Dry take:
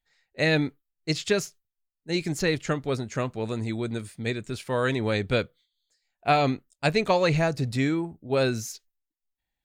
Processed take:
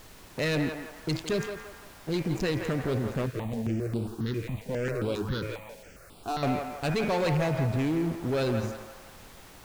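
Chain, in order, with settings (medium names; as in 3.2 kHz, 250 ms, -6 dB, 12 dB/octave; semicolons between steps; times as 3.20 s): local Wiener filter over 41 samples; de-hum 107.5 Hz, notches 23; waveshaping leveller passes 3; peak limiter -26.5 dBFS, peak gain reduction 17 dB; added noise pink -54 dBFS; band-passed feedback delay 169 ms, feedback 54%, band-pass 1.1 kHz, level -4 dB; 3.26–6.43 s: stepped phaser 7.4 Hz 210–6300 Hz; trim +4 dB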